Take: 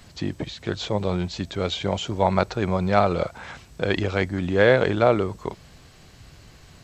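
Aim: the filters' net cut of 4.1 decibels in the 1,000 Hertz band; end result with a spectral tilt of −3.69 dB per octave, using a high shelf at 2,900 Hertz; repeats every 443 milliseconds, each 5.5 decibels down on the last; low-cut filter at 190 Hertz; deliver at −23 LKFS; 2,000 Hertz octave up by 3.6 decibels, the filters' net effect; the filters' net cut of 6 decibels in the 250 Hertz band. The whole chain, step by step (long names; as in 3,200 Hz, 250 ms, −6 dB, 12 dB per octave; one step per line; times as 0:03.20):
high-pass filter 190 Hz
parametric band 250 Hz −6 dB
parametric band 1,000 Hz −8 dB
parametric band 2,000 Hz +5.5 dB
high-shelf EQ 2,900 Hz +5.5 dB
repeating echo 443 ms, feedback 53%, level −5.5 dB
level +1.5 dB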